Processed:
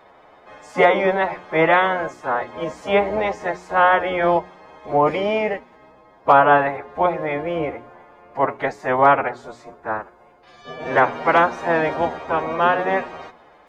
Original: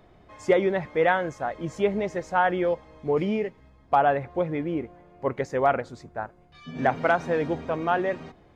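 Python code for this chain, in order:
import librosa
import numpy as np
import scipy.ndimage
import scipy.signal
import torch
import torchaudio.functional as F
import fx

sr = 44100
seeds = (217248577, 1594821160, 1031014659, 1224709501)

y = fx.spec_clip(x, sr, under_db=18)
y = fx.peak_eq(y, sr, hz=730.0, db=13.5, octaves=2.8)
y = fx.hum_notches(y, sr, base_hz=60, count=7)
y = fx.stretch_vocoder(y, sr, factor=1.6)
y = y * librosa.db_to_amplitude(-4.0)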